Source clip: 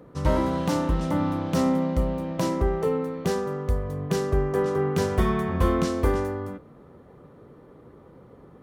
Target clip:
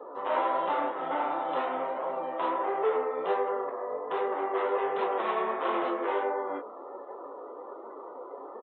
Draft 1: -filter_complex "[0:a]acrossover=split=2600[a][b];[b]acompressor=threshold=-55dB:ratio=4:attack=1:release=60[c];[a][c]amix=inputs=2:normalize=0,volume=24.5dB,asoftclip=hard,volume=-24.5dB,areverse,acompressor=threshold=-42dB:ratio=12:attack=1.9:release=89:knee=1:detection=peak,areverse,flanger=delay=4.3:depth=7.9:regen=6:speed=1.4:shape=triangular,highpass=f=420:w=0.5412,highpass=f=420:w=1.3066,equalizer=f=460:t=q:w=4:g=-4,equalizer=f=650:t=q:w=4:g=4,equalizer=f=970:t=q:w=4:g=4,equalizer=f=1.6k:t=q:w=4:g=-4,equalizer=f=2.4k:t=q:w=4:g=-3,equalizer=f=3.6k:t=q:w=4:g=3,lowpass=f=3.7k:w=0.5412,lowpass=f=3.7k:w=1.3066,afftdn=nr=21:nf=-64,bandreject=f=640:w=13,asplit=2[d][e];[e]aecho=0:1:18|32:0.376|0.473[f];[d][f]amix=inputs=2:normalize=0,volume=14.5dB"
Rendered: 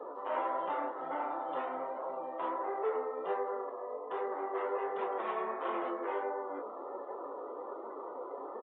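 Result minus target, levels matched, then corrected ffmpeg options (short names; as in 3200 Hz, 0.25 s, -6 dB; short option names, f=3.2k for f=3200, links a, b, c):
compressor: peak gain reduction +6.5 dB
-filter_complex "[0:a]acrossover=split=2600[a][b];[b]acompressor=threshold=-55dB:ratio=4:attack=1:release=60[c];[a][c]amix=inputs=2:normalize=0,volume=24.5dB,asoftclip=hard,volume=-24.5dB,areverse,acompressor=threshold=-35dB:ratio=12:attack=1.9:release=89:knee=1:detection=peak,areverse,flanger=delay=4.3:depth=7.9:regen=6:speed=1.4:shape=triangular,highpass=f=420:w=0.5412,highpass=f=420:w=1.3066,equalizer=f=460:t=q:w=4:g=-4,equalizer=f=650:t=q:w=4:g=4,equalizer=f=970:t=q:w=4:g=4,equalizer=f=1.6k:t=q:w=4:g=-4,equalizer=f=2.4k:t=q:w=4:g=-3,equalizer=f=3.6k:t=q:w=4:g=3,lowpass=f=3.7k:w=0.5412,lowpass=f=3.7k:w=1.3066,afftdn=nr=21:nf=-64,bandreject=f=640:w=13,asplit=2[d][e];[e]aecho=0:1:18|32:0.376|0.473[f];[d][f]amix=inputs=2:normalize=0,volume=14.5dB"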